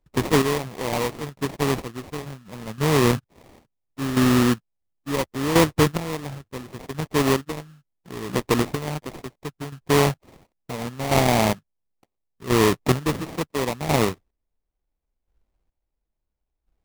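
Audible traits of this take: a buzz of ramps at a fixed pitch in blocks of 8 samples; chopped level 0.72 Hz, depth 65%, duty 30%; aliases and images of a low sample rate 1500 Hz, jitter 20%

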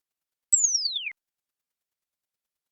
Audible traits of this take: chopped level 9.4 Hz, depth 65%, duty 15%; Opus

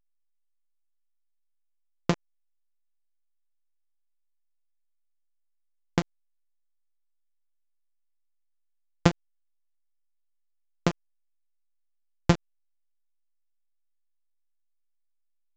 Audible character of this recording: a buzz of ramps at a fixed pitch in blocks of 256 samples; chopped level 0.91 Hz, depth 65%, duty 40%; a quantiser's noise floor 6-bit, dither none; A-law

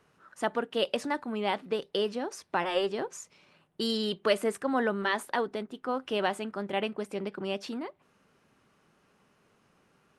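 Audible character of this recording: noise floor -68 dBFS; spectral tilt -2.0 dB/oct

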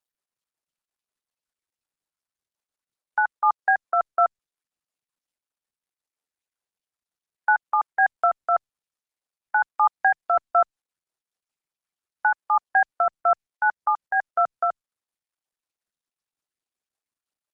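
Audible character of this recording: a quantiser's noise floor 12-bit, dither none; tremolo triangle 5.5 Hz, depth 40%; Opus

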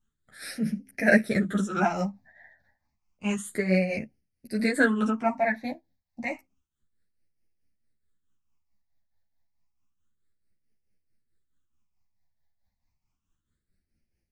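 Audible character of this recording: phasing stages 8, 0.3 Hz, lowest notch 370–1100 Hz; tremolo triangle 4.6 Hz, depth 70%; a shimmering, thickened sound

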